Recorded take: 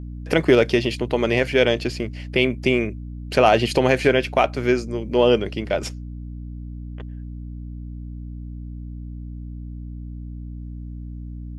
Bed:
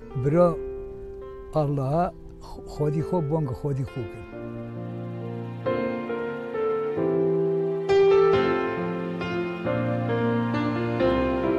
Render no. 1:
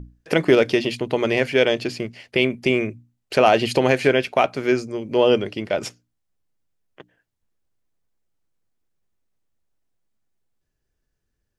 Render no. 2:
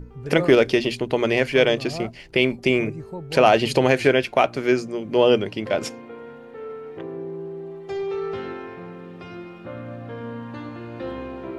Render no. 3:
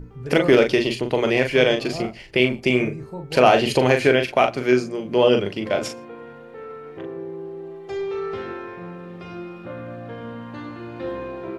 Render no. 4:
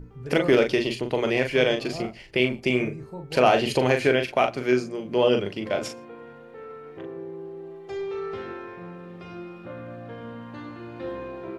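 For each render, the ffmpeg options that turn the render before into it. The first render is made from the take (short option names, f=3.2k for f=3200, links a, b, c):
-af "bandreject=f=60:t=h:w=6,bandreject=f=120:t=h:w=6,bandreject=f=180:t=h:w=6,bandreject=f=240:t=h:w=6,bandreject=f=300:t=h:w=6"
-filter_complex "[1:a]volume=-9.5dB[a];[0:a][a]amix=inputs=2:normalize=0"
-filter_complex "[0:a]asplit=2[a][b];[b]adelay=40,volume=-6dB[c];[a][c]amix=inputs=2:normalize=0,asplit=2[d][e];[e]adelay=116.6,volume=-27dB,highshelf=f=4k:g=-2.62[f];[d][f]amix=inputs=2:normalize=0"
-af "volume=-4dB"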